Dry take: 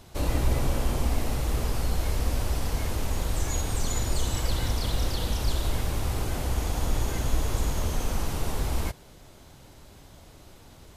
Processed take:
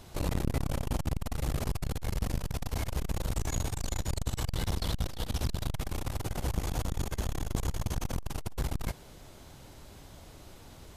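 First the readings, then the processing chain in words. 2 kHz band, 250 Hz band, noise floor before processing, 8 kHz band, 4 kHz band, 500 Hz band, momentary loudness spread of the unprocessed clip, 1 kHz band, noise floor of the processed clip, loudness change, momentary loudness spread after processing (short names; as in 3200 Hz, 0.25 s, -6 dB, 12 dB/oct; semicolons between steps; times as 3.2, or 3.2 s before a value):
-6.0 dB, -3.0 dB, -51 dBFS, -6.0 dB, -6.0 dB, -5.5 dB, 3 LU, -6.0 dB, -51 dBFS, -5.0 dB, 18 LU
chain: core saturation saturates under 210 Hz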